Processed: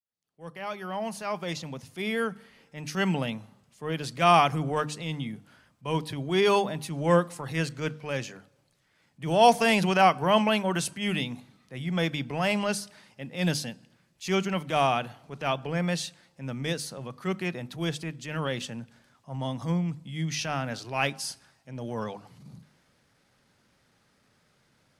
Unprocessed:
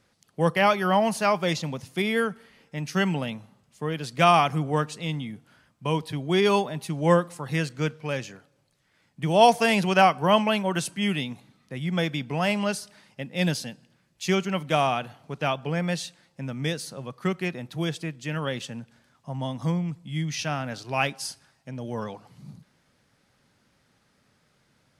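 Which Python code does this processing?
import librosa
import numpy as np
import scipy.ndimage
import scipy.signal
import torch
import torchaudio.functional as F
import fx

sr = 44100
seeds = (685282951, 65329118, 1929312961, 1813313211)

y = fx.fade_in_head(x, sr, length_s=3.04)
y = fx.transient(y, sr, attack_db=-7, sustain_db=1)
y = fx.hum_notches(y, sr, base_hz=50, count=6)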